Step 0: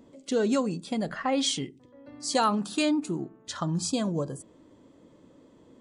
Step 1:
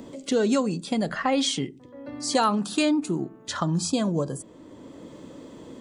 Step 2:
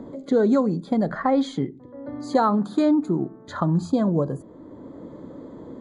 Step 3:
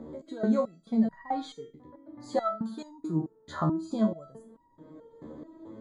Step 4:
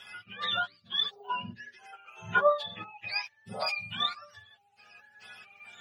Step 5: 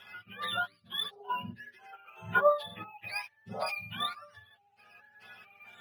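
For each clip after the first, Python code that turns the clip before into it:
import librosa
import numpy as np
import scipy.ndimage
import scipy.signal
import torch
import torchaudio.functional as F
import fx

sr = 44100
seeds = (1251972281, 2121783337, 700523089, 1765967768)

y1 = fx.band_squash(x, sr, depth_pct=40)
y1 = y1 * 10.0 ** (3.5 / 20.0)
y2 = scipy.signal.lfilter(np.full(16, 1.0 / 16), 1.0, y1)
y2 = y2 * 10.0 ** (4.0 / 20.0)
y3 = fx.resonator_held(y2, sr, hz=4.6, low_hz=76.0, high_hz=950.0)
y3 = y3 * 10.0 ** (4.0 / 20.0)
y4 = fx.octave_mirror(y3, sr, pivot_hz=880.0)
y4 = fx.spec_box(y4, sr, start_s=1.67, length_s=1.55, low_hz=320.0, high_hz=2100.0, gain_db=8)
y5 = fx.high_shelf(y4, sr, hz=3700.0, db=-9.0)
y5 = np.interp(np.arange(len(y5)), np.arange(len(y5))[::3], y5[::3])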